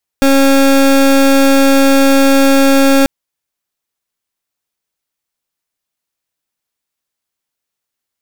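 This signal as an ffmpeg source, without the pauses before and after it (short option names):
-f lavfi -i "aevalsrc='0.398*(2*lt(mod(273*t,1),0.27)-1)':d=2.84:s=44100"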